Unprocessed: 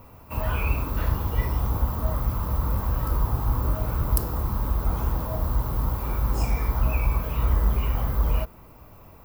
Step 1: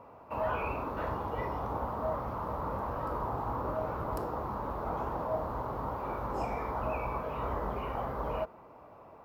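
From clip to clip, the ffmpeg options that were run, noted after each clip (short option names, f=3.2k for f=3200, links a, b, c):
-af "bandpass=f=690:t=q:w=1:csg=0,volume=2.5dB"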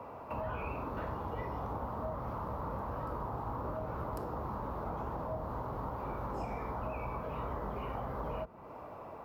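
-filter_complex "[0:a]acrossover=split=100|220[a][b][c];[a]acompressor=threshold=-51dB:ratio=4[d];[b]acompressor=threshold=-52dB:ratio=4[e];[c]acompressor=threshold=-46dB:ratio=4[f];[d][e][f]amix=inputs=3:normalize=0,volume=6dB"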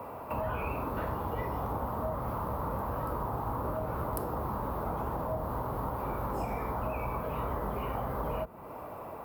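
-af "aexciter=amount=4.9:drive=3.8:freq=8.5k,volume=4.5dB"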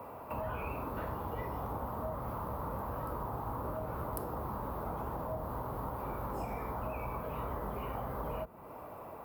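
-af "highshelf=f=12k:g=3,volume=-4.5dB"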